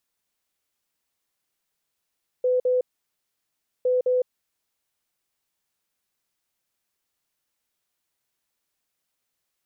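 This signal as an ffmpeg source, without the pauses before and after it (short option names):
-f lavfi -i "aevalsrc='0.126*sin(2*PI*503*t)*clip(min(mod(mod(t,1.41),0.21),0.16-mod(mod(t,1.41),0.21))/0.005,0,1)*lt(mod(t,1.41),0.42)':d=2.82:s=44100"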